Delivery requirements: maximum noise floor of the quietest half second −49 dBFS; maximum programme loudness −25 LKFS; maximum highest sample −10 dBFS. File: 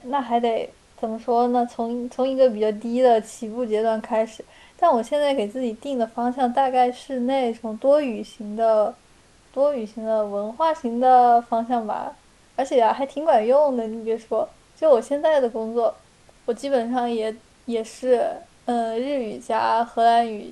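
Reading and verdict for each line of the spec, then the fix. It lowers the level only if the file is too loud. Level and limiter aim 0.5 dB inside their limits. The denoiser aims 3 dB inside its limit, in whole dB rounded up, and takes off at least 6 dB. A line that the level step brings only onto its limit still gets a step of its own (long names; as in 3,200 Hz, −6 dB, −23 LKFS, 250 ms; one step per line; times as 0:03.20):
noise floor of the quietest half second −54 dBFS: in spec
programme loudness −22.0 LKFS: out of spec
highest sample −6.0 dBFS: out of spec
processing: level −3.5 dB
brickwall limiter −10.5 dBFS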